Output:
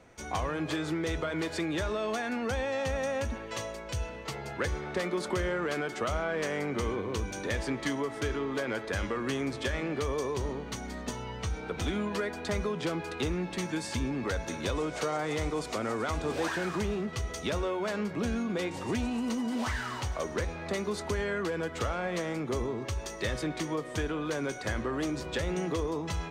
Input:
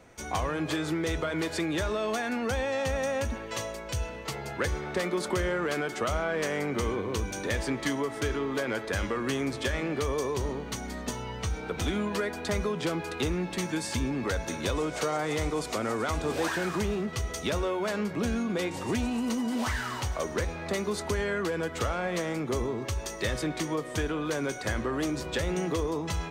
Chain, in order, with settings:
high-shelf EQ 11,000 Hz −9.5 dB
level −2 dB

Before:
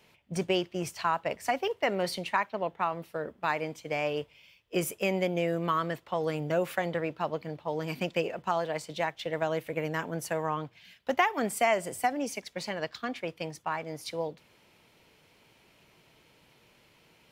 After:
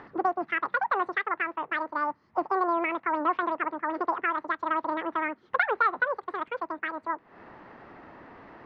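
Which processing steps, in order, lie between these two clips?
low-pass filter 1,000 Hz 24 dB per octave
upward compression, threshold −39 dBFS
wrong playback speed 7.5 ips tape played at 15 ips
level +3.5 dB

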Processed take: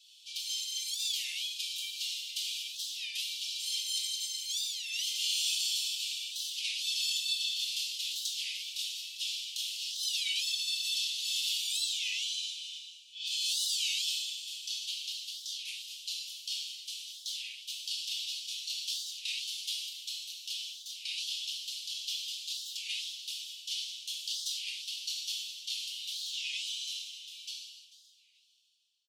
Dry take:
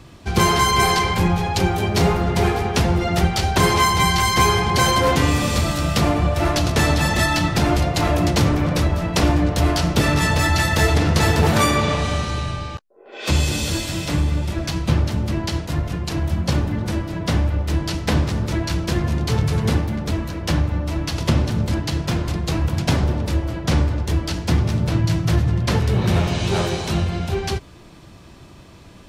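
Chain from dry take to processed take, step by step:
fade-out on the ending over 3.93 s
Butterworth high-pass 2,900 Hz 72 dB per octave
high-shelf EQ 3,800 Hz −12 dB
comb filter 5.9 ms, depth 57%
echo machine with several playback heads 147 ms, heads first and third, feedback 43%, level −18 dB
compressor whose output falls as the input rises −36 dBFS, ratio −0.5
reverb whose tail is shaped and stops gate 370 ms falling, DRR −3 dB
wow of a warped record 33 1/3 rpm, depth 250 cents
level −1 dB

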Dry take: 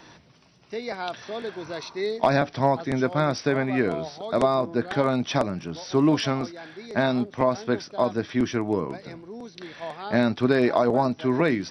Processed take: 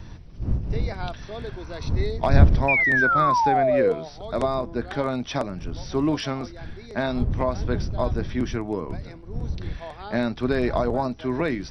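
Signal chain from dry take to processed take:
wind on the microphone 94 Hz −24 dBFS
sound drawn into the spectrogram fall, 0:02.68–0:03.93, 450–2,500 Hz −17 dBFS
level −3 dB

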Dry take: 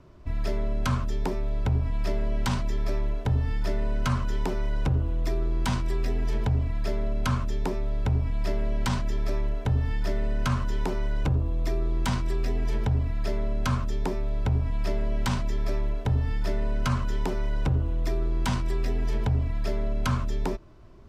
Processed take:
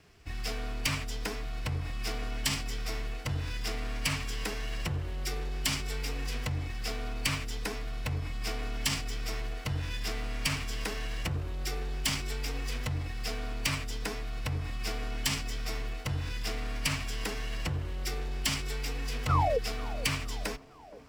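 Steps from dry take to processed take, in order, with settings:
lower of the sound and its delayed copy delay 0.39 ms
tilt shelving filter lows −9 dB, about 1,300 Hz
sound drawn into the spectrogram fall, 0:19.29–0:19.58, 430–1,300 Hz −21 dBFS
phase-vocoder pitch shift with formants kept +2 semitones
on a send: delay with a band-pass on its return 468 ms, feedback 61%, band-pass 450 Hz, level −14 dB

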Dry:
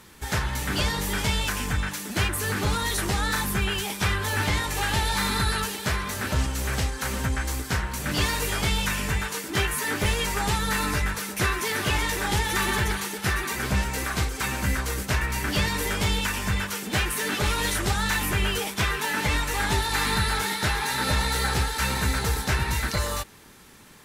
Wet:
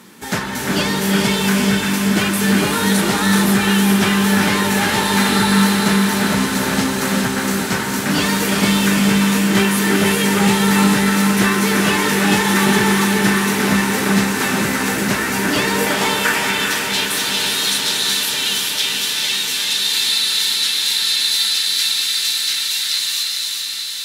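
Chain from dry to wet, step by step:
high-pass filter sweep 210 Hz → 3,700 Hz, 0:15.44–0:16.71
feedback delay with all-pass diffusion 470 ms, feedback 79%, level −7.5 dB
reverb whose tail is shaped and stops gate 450 ms rising, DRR 2.5 dB
level +5.5 dB

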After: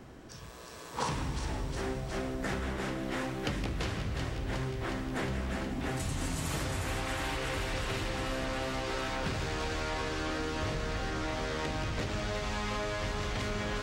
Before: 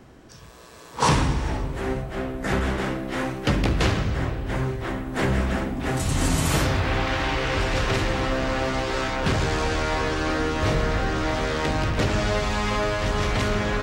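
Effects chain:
downward compressor 6 to 1, threshold −30 dBFS, peak gain reduction 14.5 dB
on a send: delay with a high-pass on its return 362 ms, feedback 79%, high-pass 2,500 Hz, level −5 dB
on the sum: level −1.5 dB

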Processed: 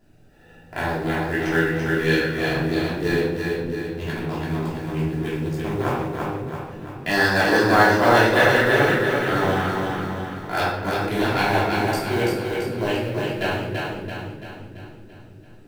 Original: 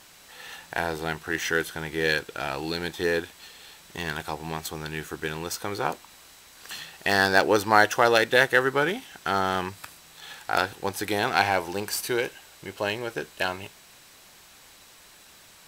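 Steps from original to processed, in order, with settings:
adaptive Wiener filter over 41 samples
low-shelf EQ 330 Hz +4 dB
in parallel at −2.5 dB: speech leveller within 3 dB 0.5 s
on the sum: log-companded quantiser 6 bits
on a send: echo with a time of its own for lows and highs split 330 Hz, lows 544 ms, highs 336 ms, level −3.5 dB
on the sum: rectangular room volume 320 cubic metres, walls mixed, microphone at 3.1 metres
level −11 dB

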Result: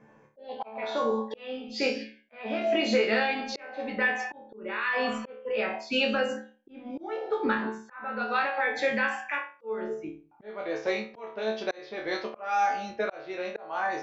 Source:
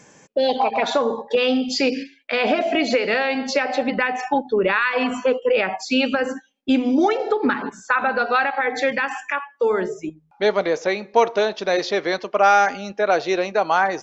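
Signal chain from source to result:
resonators tuned to a chord D2 fifth, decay 0.38 s
volume swells 552 ms
low-pass that shuts in the quiet parts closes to 1,400 Hz, open at −29 dBFS
level +6.5 dB

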